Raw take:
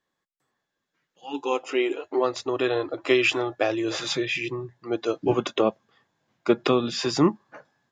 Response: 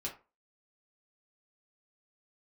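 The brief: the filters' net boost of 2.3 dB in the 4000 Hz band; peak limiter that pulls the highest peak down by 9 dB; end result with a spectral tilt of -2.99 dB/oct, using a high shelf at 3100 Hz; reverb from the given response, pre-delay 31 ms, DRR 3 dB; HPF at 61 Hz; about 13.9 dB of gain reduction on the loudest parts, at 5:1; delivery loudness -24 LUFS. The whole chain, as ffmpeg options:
-filter_complex "[0:a]highpass=61,highshelf=f=3.1k:g=-4,equalizer=f=4k:t=o:g=6,acompressor=threshold=-30dB:ratio=5,alimiter=limit=-24dB:level=0:latency=1,asplit=2[a][b];[1:a]atrim=start_sample=2205,adelay=31[c];[b][c]afir=irnorm=-1:irlink=0,volume=-3dB[d];[a][d]amix=inputs=2:normalize=0,volume=9dB"

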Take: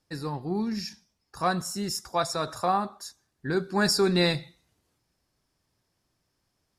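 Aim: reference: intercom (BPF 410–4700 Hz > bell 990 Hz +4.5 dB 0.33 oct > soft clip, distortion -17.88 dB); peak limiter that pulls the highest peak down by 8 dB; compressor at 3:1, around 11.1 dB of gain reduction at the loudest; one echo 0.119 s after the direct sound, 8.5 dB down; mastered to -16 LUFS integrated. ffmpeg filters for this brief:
-af "acompressor=threshold=-35dB:ratio=3,alimiter=level_in=4dB:limit=-24dB:level=0:latency=1,volume=-4dB,highpass=410,lowpass=4.7k,equalizer=f=990:t=o:w=0.33:g=4.5,aecho=1:1:119:0.376,asoftclip=threshold=-31dB,volume=26.5dB"

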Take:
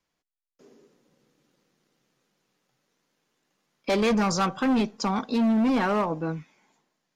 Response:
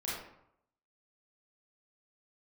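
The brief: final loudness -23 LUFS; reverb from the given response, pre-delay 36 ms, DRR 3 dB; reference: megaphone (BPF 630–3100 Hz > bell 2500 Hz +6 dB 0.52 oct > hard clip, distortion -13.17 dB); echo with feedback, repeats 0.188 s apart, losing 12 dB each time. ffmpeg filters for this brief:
-filter_complex "[0:a]aecho=1:1:188|376|564:0.251|0.0628|0.0157,asplit=2[a][b];[1:a]atrim=start_sample=2205,adelay=36[c];[b][c]afir=irnorm=-1:irlink=0,volume=-6.5dB[d];[a][d]amix=inputs=2:normalize=0,highpass=630,lowpass=3.1k,equalizer=f=2.5k:t=o:w=0.52:g=6,asoftclip=type=hard:threshold=-23dB,volume=6.5dB"

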